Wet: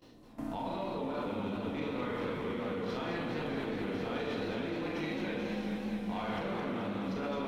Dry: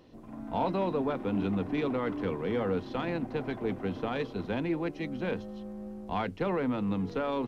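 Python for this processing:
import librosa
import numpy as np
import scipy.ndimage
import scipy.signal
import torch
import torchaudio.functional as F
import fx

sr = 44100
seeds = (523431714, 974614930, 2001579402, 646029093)

y = fx.rev_schroeder(x, sr, rt60_s=0.83, comb_ms=26, drr_db=-4.5)
y = fx.level_steps(y, sr, step_db=19)
y = fx.high_shelf(y, sr, hz=2700.0, db=8.0)
y = fx.echo_warbled(y, sr, ms=214, feedback_pct=78, rate_hz=2.8, cents=143, wet_db=-6.0)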